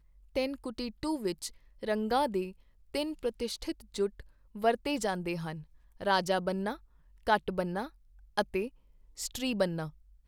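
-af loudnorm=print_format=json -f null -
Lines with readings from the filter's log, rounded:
"input_i" : "-33.9",
"input_tp" : "-12.3",
"input_lra" : "2.9",
"input_thresh" : "-44.4",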